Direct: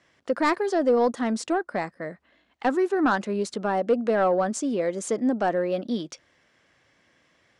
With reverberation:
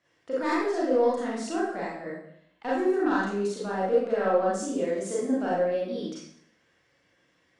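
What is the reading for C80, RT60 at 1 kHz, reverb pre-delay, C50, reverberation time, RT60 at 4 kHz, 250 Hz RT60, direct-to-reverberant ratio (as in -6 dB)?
4.0 dB, 0.65 s, 30 ms, 0.0 dB, 0.65 s, 0.60 s, 0.75 s, -7.0 dB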